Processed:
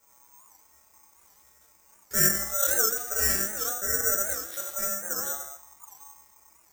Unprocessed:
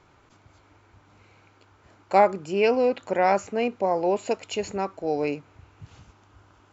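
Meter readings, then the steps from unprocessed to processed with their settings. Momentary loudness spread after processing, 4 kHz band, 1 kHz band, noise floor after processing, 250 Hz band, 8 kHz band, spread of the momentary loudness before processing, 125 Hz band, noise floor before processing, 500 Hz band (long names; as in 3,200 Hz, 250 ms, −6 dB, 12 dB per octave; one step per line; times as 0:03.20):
10 LU, +4.0 dB, −13.5 dB, −61 dBFS, −11.5 dB, can't be measured, 9 LU, −2.5 dB, −59 dBFS, −14.0 dB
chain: low-pass filter 5,300 Hz 12 dB per octave
notch filter 2,200 Hz, Q 11
tuned comb filter 130 Hz, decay 0.73 s, harmonics all, mix 90%
rectangular room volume 920 cubic metres, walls furnished, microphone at 4.4 metres
bad sample-rate conversion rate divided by 6×, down none, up zero stuff
ring modulation 980 Hz
wow of a warped record 78 rpm, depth 160 cents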